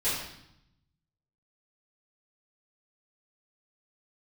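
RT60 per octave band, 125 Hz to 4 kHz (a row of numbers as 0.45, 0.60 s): 1.4, 1.1, 0.75, 0.80, 0.75, 0.75 s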